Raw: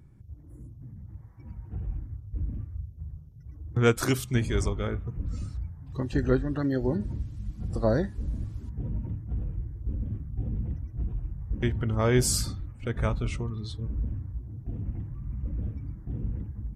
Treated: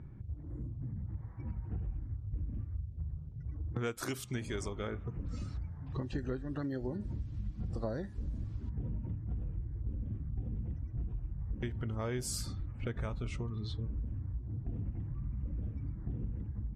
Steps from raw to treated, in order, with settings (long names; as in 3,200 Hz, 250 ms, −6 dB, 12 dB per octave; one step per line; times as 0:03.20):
low-pass that shuts in the quiet parts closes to 2,200 Hz, open at −22 dBFS
0:03.74–0:05.97: low-shelf EQ 150 Hz −8 dB
downward compressor 6 to 1, threshold −40 dBFS, peak gain reduction 21 dB
level +5 dB